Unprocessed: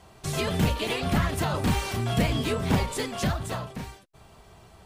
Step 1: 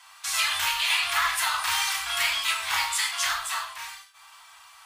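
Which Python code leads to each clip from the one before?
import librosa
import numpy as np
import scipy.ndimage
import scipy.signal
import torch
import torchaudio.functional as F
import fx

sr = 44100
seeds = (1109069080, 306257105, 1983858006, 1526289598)

y = fx.octave_divider(x, sr, octaves=1, level_db=1.0)
y = scipy.signal.sosfilt(scipy.signal.cheby2(4, 40, 530.0, 'highpass', fs=sr, output='sos'), y)
y = fx.rev_gated(y, sr, seeds[0], gate_ms=170, shape='falling', drr_db=0.0)
y = F.gain(torch.from_numpy(y), 6.0).numpy()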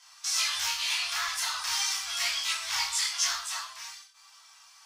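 y = fx.peak_eq(x, sr, hz=5600.0, db=14.0, octaves=0.81)
y = fx.detune_double(y, sr, cents=12)
y = F.gain(torch.from_numpy(y), -5.0).numpy()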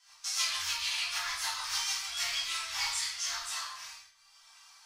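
y = fx.rotary_switch(x, sr, hz=6.7, then_hz=1.0, switch_at_s=2.15)
y = fx.room_shoebox(y, sr, seeds[1], volume_m3=110.0, walls='mixed', distance_m=1.2)
y = F.gain(torch.from_numpy(y), -5.0).numpy()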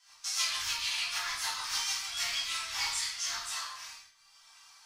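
y = fx.octave_divider(x, sr, octaves=1, level_db=-3.0)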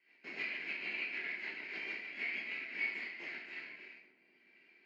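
y = fx.lower_of_two(x, sr, delay_ms=0.43)
y = fx.cabinet(y, sr, low_hz=220.0, low_slope=24, high_hz=2700.0, hz=(360.0, 520.0, 850.0, 1200.0, 2200.0), db=(5, -7, -8, -7, 9))
y = fx.echo_filtered(y, sr, ms=252, feedback_pct=79, hz=1200.0, wet_db=-16)
y = F.gain(torch.from_numpy(y), -4.5).numpy()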